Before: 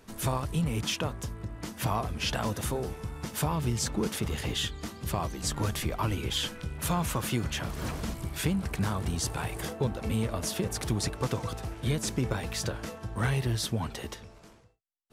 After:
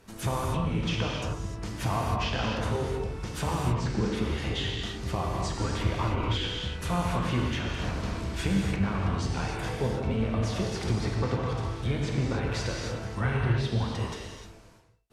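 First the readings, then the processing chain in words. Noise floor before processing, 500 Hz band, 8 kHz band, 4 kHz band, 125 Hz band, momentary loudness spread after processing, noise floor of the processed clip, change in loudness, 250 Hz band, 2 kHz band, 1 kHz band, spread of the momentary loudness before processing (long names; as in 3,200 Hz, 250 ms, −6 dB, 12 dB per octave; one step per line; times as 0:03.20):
−54 dBFS, +2.5 dB, −7.0 dB, −0.5 dB, +3.0 dB, 5 LU, −46 dBFS, +2.0 dB, +2.0 dB, +2.5 dB, +2.5 dB, 7 LU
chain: treble cut that deepens with the level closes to 2,700 Hz, closed at −25.5 dBFS
reverb whose tail is shaped and stops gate 330 ms flat, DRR −2 dB
level −1.5 dB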